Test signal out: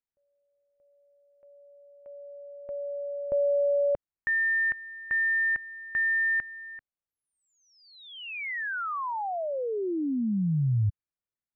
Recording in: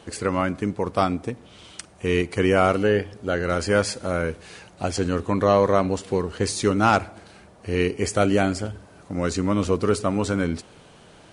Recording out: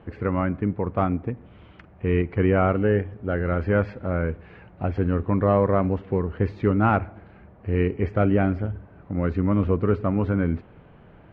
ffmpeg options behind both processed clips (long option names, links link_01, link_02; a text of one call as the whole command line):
ffmpeg -i in.wav -af "lowpass=frequency=2300:width=0.5412,lowpass=frequency=2300:width=1.3066,lowshelf=frequency=200:gain=11,volume=-4dB" out.wav